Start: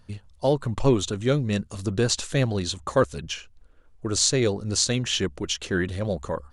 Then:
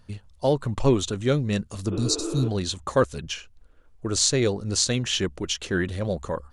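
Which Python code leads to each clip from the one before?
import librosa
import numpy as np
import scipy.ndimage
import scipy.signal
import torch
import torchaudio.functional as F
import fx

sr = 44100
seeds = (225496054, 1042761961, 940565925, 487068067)

y = fx.spec_repair(x, sr, seeds[0], start_s=1.94, length_s=0.52, low_hz=300.0, high_hz=3700.0, source='before')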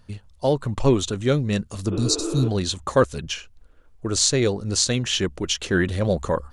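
y = fx.rider(x, sr, range_db=10, speed_s=2.0)
y = y * librosa.db_to_amplitude(2.0)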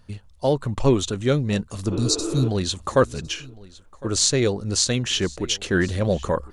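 y = x + 10.0 ** (-22.0 / 20.0) * np.pad(x, (int(1058 * sr / 1000.0), 0))[:len(x)]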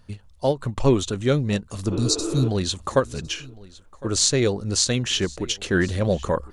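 y = fx.end_taper(x, sr, db_per_s=320.0)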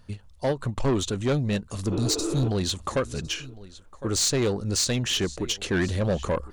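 y = 10.0 ** (-18.5 / 20.0) * np.tanh(x / 10.0 ** (-18.5 / 20.0))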